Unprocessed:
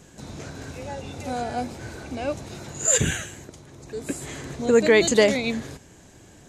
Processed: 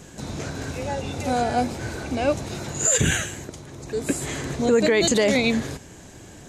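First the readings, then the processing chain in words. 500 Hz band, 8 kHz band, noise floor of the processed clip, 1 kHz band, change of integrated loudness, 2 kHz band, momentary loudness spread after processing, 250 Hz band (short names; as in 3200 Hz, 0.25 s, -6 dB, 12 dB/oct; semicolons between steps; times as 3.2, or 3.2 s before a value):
-0.5 dB, +1.0 dB, -44 dBFS, +5.0 dB, -0.5 dB, +1.0 dB, 15 LU, +3.0 dB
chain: limiter -16.5 dBFS, peak gain reduction 11 dB; gain +6 dB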